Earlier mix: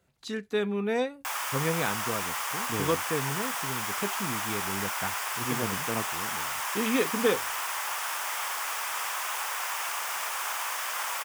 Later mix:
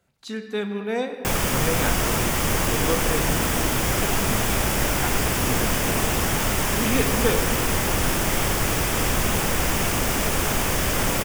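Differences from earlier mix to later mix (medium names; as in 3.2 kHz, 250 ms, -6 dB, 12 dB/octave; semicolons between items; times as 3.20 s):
background: remove ladder high-pass 810 Hz, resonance 40%; reverb: on, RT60 2.6 s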